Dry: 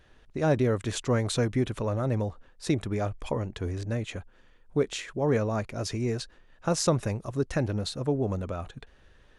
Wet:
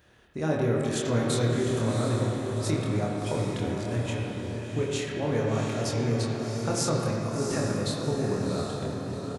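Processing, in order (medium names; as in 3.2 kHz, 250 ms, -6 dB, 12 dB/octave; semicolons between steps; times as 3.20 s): high-pass 74 Hz; treble shelf 9.4 kHz +11 dB; in parallel at +2.5 dB: compression, threshold -33 dBFS, peak gain reduction 14 dB; on the sum: doubling 26 ms -3 dB; echo that smears into a reverb 728 ms, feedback 42%, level -5.5 dB; reverberation RT60 2.8 s, pre-delay 42 ms, DRR 0 dB; trim -8.5 dB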